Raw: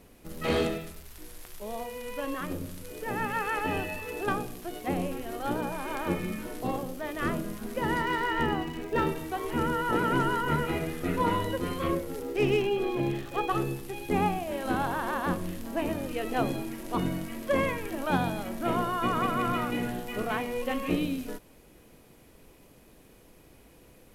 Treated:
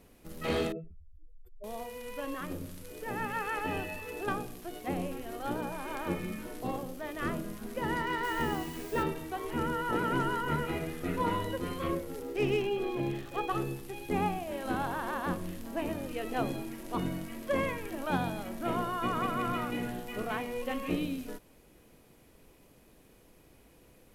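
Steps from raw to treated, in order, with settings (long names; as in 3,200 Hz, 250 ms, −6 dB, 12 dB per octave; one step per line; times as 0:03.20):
0:00.72–0:01.64: expanding power law on the bin magnitudes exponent 3.2
0:08.23–0:09.02: background noise white −46 dBFS
level −4 dB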